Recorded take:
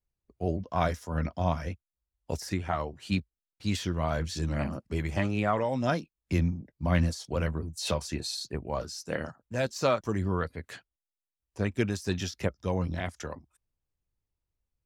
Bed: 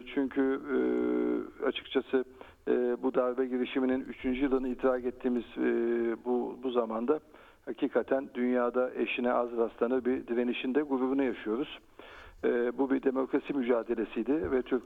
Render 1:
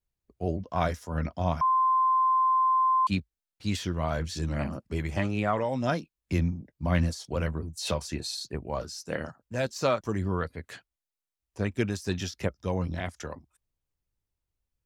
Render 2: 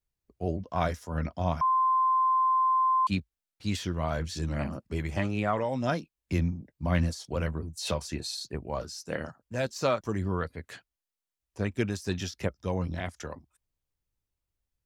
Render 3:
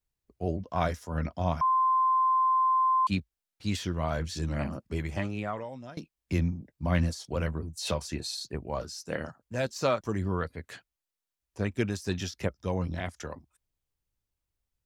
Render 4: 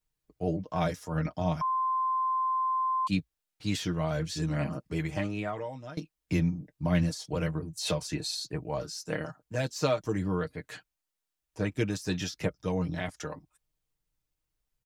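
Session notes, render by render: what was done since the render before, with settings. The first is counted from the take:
1.61–3.07 s: bleep 1.04 kHz -20 dBFS
trim -1 dB
4.93–5.97 s: fade out, to -22.5 dB
dynamic bell 1.2 kHz, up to -6 dB, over -37 dBFS, Q 0.86; comb 6.5 ms, depth 64%

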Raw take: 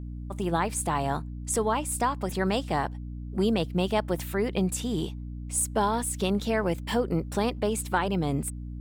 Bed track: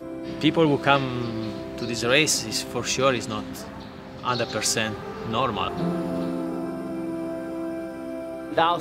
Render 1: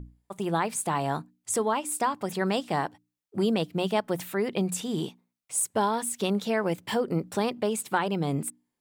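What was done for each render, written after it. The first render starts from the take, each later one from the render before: hum notches 60/120/180/240/300 Hz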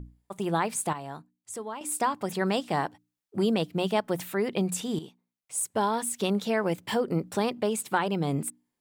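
0.93–1.81 s: gain -10.5 dB; 4.99–5.97 s: fade in, from -12 dB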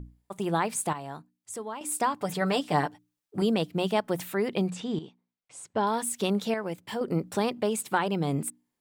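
2.22–3.42 s: comb 6.8 ms; 4.69–5.87 s: distance through air 120 m; 6.54–7.01 s: gain -6 dB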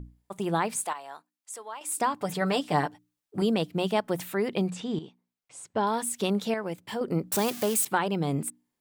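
0.85–1.98 s: high-pass 660 Hz; 7.32–7.85 s: zero-crossing glitches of -22.5 dBFS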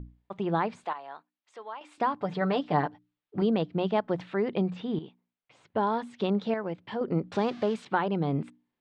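low-pass 3.7 kHz 24 dB/octave; dynamic bell 2.7 kHz, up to -6 dB, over -48 dBFS, Q 1.2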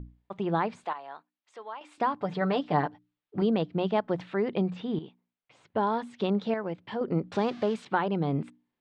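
no audible change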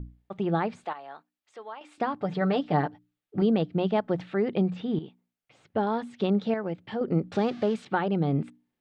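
bass shelf 340 Hz +4 dB; band-stop 1 kHz, Q 7.8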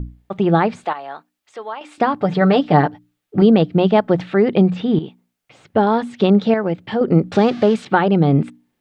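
trim +11.5 dB

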